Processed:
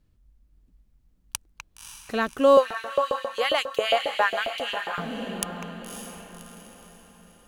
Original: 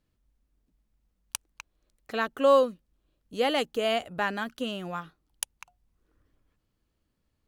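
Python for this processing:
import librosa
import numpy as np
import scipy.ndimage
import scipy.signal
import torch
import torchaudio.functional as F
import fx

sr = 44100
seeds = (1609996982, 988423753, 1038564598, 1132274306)

y = fx.echo_diffused(x, sr, ms=565, feedback_pct=45, wet_db=-6)
y = fx.filter_lfo_highpass(y, sr, shape='saw_up', hz=7.4, low_hz=500.0, high_hz=3200.0, q=1.9, at=(2.57, 4.98))
y = fx.low_shelf(y, sr, hz=190.0, db=11.5)
y = F.gain(torch.from_numpy(y), 2.0).numpy()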